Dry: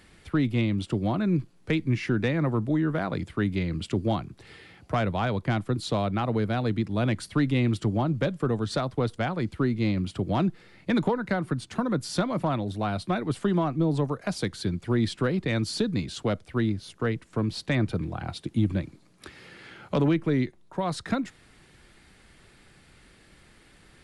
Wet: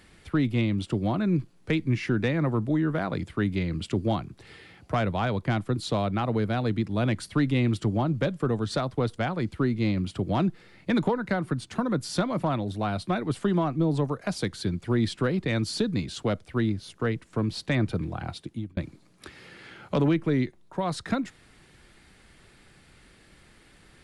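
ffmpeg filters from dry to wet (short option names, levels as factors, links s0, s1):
-filter_complex "[0:a]asplit=2[s0][s1];[s0]atrim=end=18.77,asetpts=PTS-STARTPTS,afade=t=out:st=18.25:d=0.52[s2];[s1]atrim=start=18.77,asetpts=PTS-STARTPTS,afade=t=in:d=0.004:c=hsin[s3];[s2][s3]concat=n=2:v=0:a=1"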